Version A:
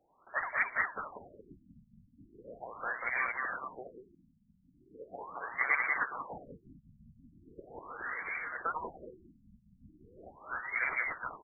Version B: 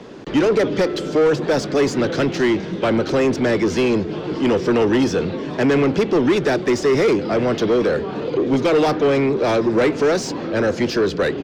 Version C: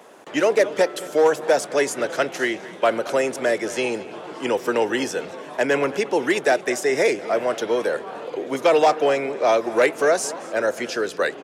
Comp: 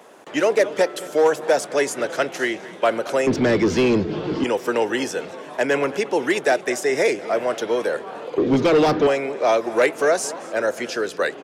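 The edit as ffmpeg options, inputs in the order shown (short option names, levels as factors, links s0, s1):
-filter_complex "[1:a]asplit=2[s0][s1];[2:a]asplit=3[s2][s3][s4];[s2]atrim=end=3.272[s5];[s0]atrim=start=3.268:end=4.442[s6];[s3]atrim=start=4.438:end=8.382[s7];[s1]atrim=start=8.378:end=9.072[s8];[s4]atrim=start=9.068[s9];[s5][s6]acrossfade=d=0.004:c1=hsin:c2=hsin[s10];[s10][s7]acrossfade=d=0.004:c1=hsin:c2=hsin[s11];[s11][s8]acrossfade=d=0.004:c1=hsin:c2=hsin[s12];[s12][s9]acrossfade=d=0.004:c1=hsin:c2=hsin"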